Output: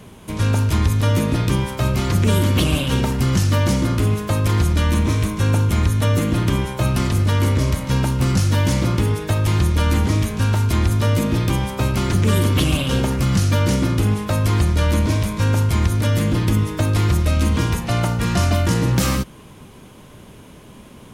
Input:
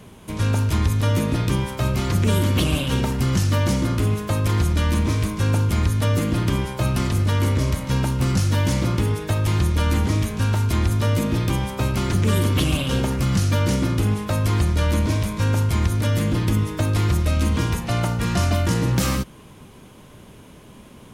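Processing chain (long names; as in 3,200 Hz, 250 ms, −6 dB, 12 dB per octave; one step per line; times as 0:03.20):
0:04.83–0:06.91: notch filter 4,800 Hz, Q 12
level +2.5 dB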